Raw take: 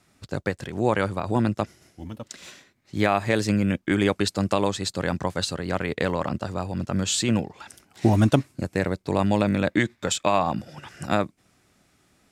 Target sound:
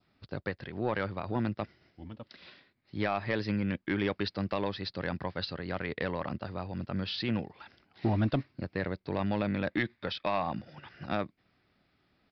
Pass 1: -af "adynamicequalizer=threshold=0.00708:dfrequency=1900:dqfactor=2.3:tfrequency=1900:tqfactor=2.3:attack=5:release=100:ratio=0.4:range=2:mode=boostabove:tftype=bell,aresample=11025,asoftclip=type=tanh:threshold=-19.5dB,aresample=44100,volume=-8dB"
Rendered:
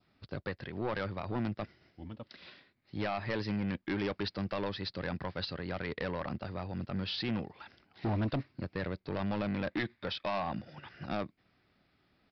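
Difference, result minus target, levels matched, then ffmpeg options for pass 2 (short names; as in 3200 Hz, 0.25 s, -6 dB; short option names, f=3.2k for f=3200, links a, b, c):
soft clip: distortion +9 dB
-af "adynamicequalizer=threshold=0.00708:dfrequency=1900:dqfactor=2.3:tfrequency=1900:tqfactor=2.3:attack=5:release=100:ratio=0.4:range=2:mode=boostabove:tftype=bell,aresample=11025,asoftclip=type=tanh:threshold=-10.5dB,aresample=44100,volume=-8dB"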